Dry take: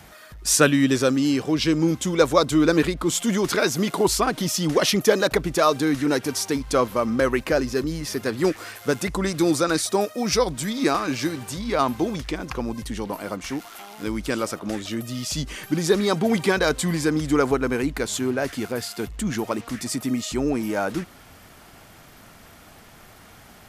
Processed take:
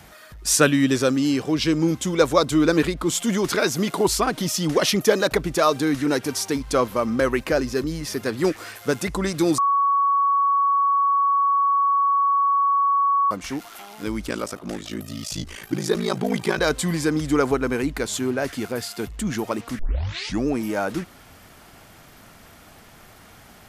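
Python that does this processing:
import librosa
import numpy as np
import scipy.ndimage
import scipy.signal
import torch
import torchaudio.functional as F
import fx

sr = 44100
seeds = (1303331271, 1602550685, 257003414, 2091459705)

y = fx.ring_mod(x, sr, carrier_hz=27.0, at=(14.26, 16.59))
y = fx.edit(y, sr, fx.bleep(start_s=9.58, length_s=3.73, hz=1120.0, db=-16.0),
    fx.tape_start(start_s=19.79, length_s=0.68), tone=tone)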